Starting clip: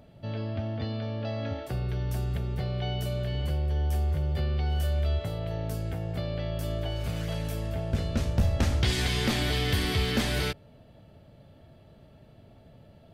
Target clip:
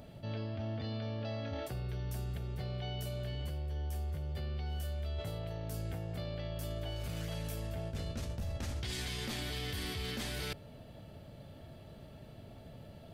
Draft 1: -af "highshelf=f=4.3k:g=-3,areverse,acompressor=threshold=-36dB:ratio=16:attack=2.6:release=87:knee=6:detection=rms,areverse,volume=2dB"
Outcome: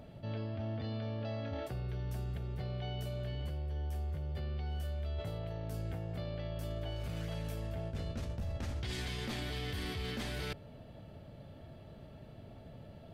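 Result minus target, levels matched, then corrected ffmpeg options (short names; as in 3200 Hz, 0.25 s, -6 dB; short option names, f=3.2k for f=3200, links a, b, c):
8000 Hz band -6.0 dB
-af "highshelf=f=4.3k:g=6,areverse,acompressor=threshold=-36dB:ratio=16:attack=2.6:release=87:knee=6:detection=rms,areverse,volume=2dB"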